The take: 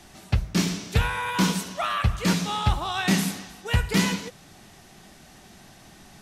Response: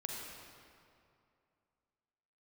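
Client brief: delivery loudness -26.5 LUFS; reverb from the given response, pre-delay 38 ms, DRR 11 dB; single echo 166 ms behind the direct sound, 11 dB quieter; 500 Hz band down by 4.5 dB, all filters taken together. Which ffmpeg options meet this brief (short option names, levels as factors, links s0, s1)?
-filter_complex "[0:a]equalizer=f=500:t=o:g=-6,aecho=1:1:166:0.282,asplit=2[s0][s1];[1:a]atrim=start_sample=2205,adelay=38[s2];[s1][s2]afir=irnorm=-1:irlink=0,volume=0.266[s3];[s0][s3]amix=inputs=2:normalize=0,volume=0.891"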